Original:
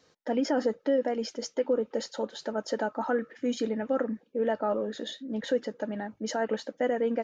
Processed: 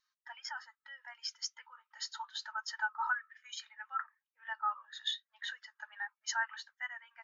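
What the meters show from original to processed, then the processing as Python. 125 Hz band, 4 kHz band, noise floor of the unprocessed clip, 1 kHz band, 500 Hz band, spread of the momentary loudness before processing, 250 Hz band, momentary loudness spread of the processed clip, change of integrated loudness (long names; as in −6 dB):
can't be measured, +0.5 dB, −67 dBFS, −4.0 dB, −39.5 dB, 8 LU, below −40 dB, 15 LU, −9.0 dB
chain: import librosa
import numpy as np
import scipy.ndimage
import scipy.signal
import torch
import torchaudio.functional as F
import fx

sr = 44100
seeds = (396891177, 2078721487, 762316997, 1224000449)

y = fx.rider(x, sr, range_db=3, speed_s=0.5)
y = scipy.signal.sosfilt(scipy.signal.butter(8, 960.0, 'highpass', fs=sr, output='sos'), y)
y = fx.spectral_expand(y, sr, expansion=1.5)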